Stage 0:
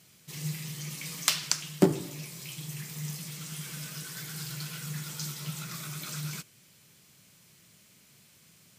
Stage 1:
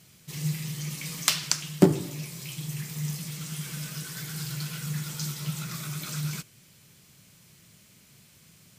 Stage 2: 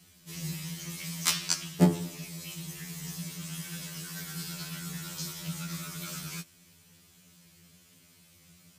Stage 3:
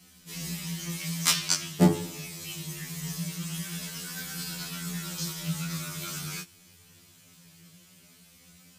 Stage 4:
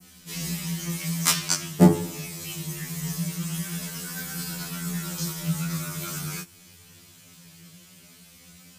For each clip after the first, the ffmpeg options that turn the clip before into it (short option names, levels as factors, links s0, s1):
-af "lowshelf=f=130:g=8.5,volume=1.26"
-af "afftfilt=real='re*2*eq(mod(b,4),0)':imag='im*2*eq(mod(b,4),0)':win_size=2048:overlap=0.75"
-af "flanger=delay=15.5:depth=5.4:speed=0.23,volume=2.11"
-af "adynamicequalizer=threshold=0.00447:dfrequency=3600:dqfactor=0.73:tfrequency=3600:tqfactor=0.73:attack=5:release=100:ratio=0.375:range=3.5:mode=cutabove:tftype=bell,volume=1.78"